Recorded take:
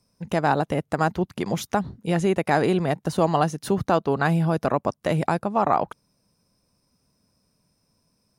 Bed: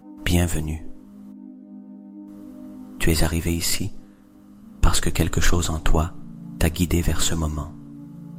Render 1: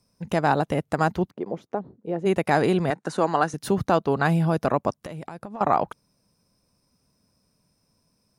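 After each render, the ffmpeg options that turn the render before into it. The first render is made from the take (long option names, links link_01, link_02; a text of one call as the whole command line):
ffmpeg -i in.wav -filter_complex "[0:a]asplit=3[link_01][link_02][link_03];[link_01]afade=type=out:start_time=1.29:duration=0.02[link_04];[link_02]bandpass=frequency=440:width_type=q:width=1.5,afade=type=in:start_time=1.29:duration=0.02,afade=type=out:start_time=2.25:duration=0.02[link_05];[link_03]afade=type=in:start_time=2.25:duration=0.02[link_06];[link_04][link_05][link_06]amix=inputs=3:normalize=0,asettb=1/sr,asplit=3[link_07][link_08][link_09];[link_07]atrim=end=2.904[link_10];[link_08]atrim=start=2.9:end=3.54,asetpts=PTS-STARTPTS,afade=type=in:duration=0.004:curve=qsin,afade=type=out:start_time=0.636:duration=0.004:curve=qsin,highpass=250,equalizer=frequency=640:width_type=q:width=4:gain=-3,equalizer=frequency=1500:width_type=q:width=4:gain=7,equalizer=frequency=3100:width_type=q:width=4:gain=-6,equalizer=frequency=5100:width_type=q:width=4:gain=-4,lowpass=frequency=9300:width=0.5412,lowpass=frequency=9300:width=1.3066[link_11];[link_09]atrim=start=3.536[link_12];[link_10][link_11]acrossfade=duration=0.004:curve1=hsin:curve2=qsin[link_13];[link_13][link_12]acrossfade=duration=0.004:curve1=qsin:curve2=hsin,asettb=1/sr,asplit=3[link_14][link_15][link_16];[link_14]atrim=end=4.934[link_17];[link_15]atrim=start=4.93:end=5.61,asetpts=PTS-STARTPTS,afade=type=in:duration=0.004:curve=qsin,afade=type=out:start_time=0.676:duration=0.004:curve=qsin,acompressor=threshold=-32dB:ratio=12:attack=3.2:release=140:knee=1:detection=peak[link_18];[link_16]atrim=start=5.606[link_19];[link_17][link_18]acrossfade=duration=0.004:curve1=hsin:curve2=qsin[link_20];[link_20][link_19]acrossfade=duration=0.004:curve1=qsin:curve2=hsin" out.wav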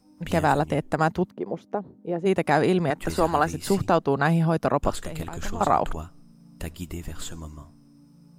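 ffmpeg -i in.wav -i bed.wav -filter_complex "[1:a]volume=-14dB[link_01];[0:a][link_01]amix=inputs=2:normalize=0" out.wav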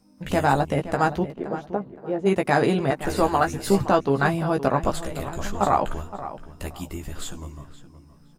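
ffmpeg -i in.wav -filter_complex "[0:a]asplit=2[link_01][link_02];[link_02]adelay=15,volume=-5dB[link_03];[link_01][link_03]amix=inputs=2:normalize=0,asplit=2[link_04][link_05];[link_05]adelay=519,lowpass=frequency=2700:poles=1,volume=-13dB,asplit=2[link_06][link_07];[link_07]adelay=519,lowpass=frequency=2700:poles=1,volume=0.28,asplit=2[link_08][link_09];[link_09]adelay=519,lowpass=frequency=2700:poles=1,volume=0.28[link_10];[link_04][link_06][link_08][link_10]amix=inputs=4:normalize=0" out.wav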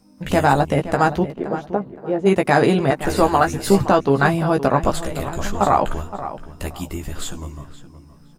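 ffmpeg -i in.wav -af "volume=5dB,alimiter=limit=-3dB:level=0:latency=1" out.wav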